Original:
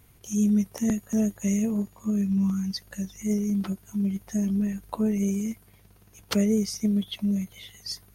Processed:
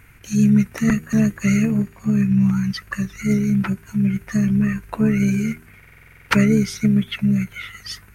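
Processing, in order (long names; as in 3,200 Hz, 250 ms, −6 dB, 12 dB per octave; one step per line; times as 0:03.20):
flat-topped bell 1,900 Hz +15.5 dB 1.2 octaves
pitch-shifted copies added −7 semitones −9 dB
low-shelf EQ 380 Hz +7 dB
hum removal 78.98 Hz, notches 6
buffer that repeats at 0:05.78, samples 2,048, times 10
level +1.5 dB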